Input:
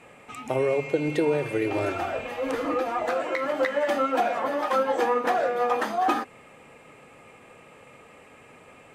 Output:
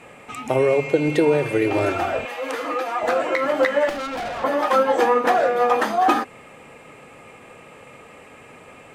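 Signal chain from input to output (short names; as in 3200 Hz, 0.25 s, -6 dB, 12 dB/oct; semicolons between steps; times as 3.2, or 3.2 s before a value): 2.25–3.03 HPF 860 Hz 6 dB/oct; 3.89–4.44 tube stage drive 32 dB, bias 0.7; gain +6 dB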